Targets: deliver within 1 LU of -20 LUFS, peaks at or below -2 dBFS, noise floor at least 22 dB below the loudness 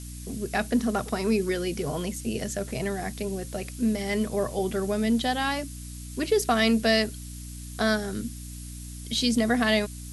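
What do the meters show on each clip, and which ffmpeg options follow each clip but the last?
hum 60 Hz; harmonics up to 300 Hz; hum level -37 dBFS; noise floor -39 dBFS; noise floor target -49 dBFS; loudness -27.0 LUFS; peak -10.0 dBFS; loudness target -20.0 LUFS
-> -af "bandreject=f=60:t=h:w=4,bandreject=f=120:t=h:w=4,bandreject=f=180:t=h:w=4,bandreject=f=240:t=h:w=4,bandreject=f=300:t=h:w=4"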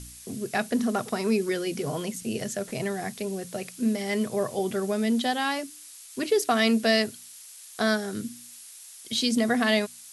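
hum none; noise floor -47 dBFS; noise floor target -49 dBFS
-> -af "afftdn=nr=6:nf=-47"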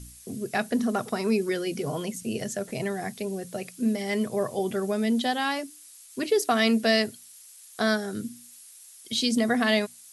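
noise floor -50 dBFS; loudness -27.0 LUFS; peak -10.0 dBFS; loudness target -20.0 LUFS
-> -af "volume=7dB"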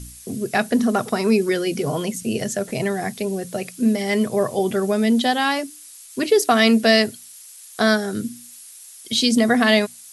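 loudness -20.0 LUFS; peak -3.0 dBFS; noise floor -43 dBFS

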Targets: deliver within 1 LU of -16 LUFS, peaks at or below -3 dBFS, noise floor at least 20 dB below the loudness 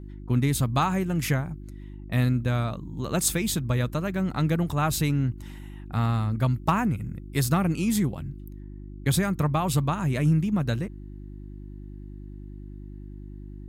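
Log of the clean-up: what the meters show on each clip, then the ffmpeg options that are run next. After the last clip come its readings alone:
hum 50 Hz; harmonics up to 350 Hz; hum level -38 dBFS; loudness -26.0 LUFS; peak -9.0 dBFS; loudness target -16.0 LUFS
-> -af "bandreject=f=50:t=h:w=4,bandreject=f=100:t=h:w=4,bandreject=f=150:t=h:w=4,bandreject=f=200:t=h:w=4,bandreject=f=250:t=h:w=4,bandreject=f=300:t=h:w=4,bandreject=f=350:t=h:w=4"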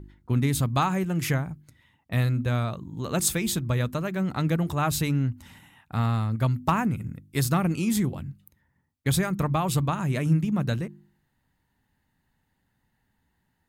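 hum none; loudness -26.5 LUFS; peak -9.5 dBFS; loudness target -16.0 LUFS
-> -af "volume=10.5dB,alimiter=limit=-3dB:level=0:latency=1"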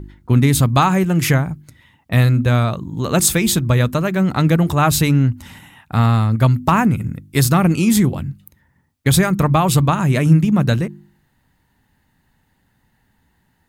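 loudness -16.0 LUFS; peak -3.0 dBFS; noise floor -63 dBFS

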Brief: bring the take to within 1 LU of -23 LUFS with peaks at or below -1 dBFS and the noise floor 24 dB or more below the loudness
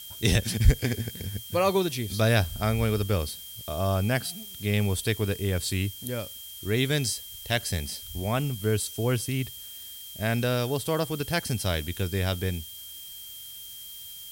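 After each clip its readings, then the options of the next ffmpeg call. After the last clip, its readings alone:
steady tone 3200 Hz; tone level -44 dBFS; noise floor -42 dBFS; noise floor target -52 dBFS; loudness -28.0 LUFS; peak -6.0 dBFS; loudness target -23.0 LUFS
-> -af "bandreject=f=3.2k:w=30"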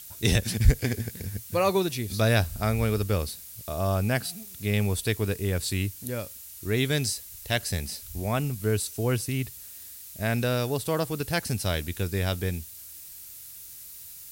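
steady tone none; noise floor -44 dBFS; noise floor target -52 dBFS
-> -af "afftdn=nr=8:nf=-44"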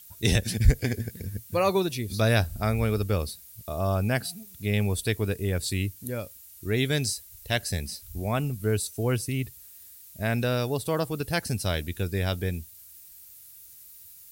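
noise floor -49 dBFS; noise floor target -52 dBFS
-> -af "afftdn=nr=6:nf=-49"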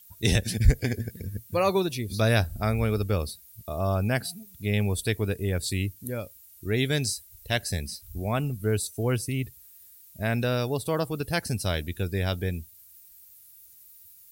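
noise floor -53 dBFS; loudness -28.0 LUFS; peak -6.5 dBFS; loudness target -23.0 LUFS
-> -af "volume=5dB"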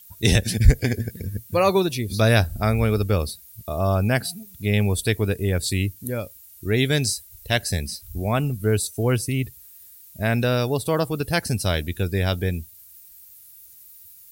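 loudness -23.0 LUFS; peak -1.5 dBFS; noise floor -48 dBFS

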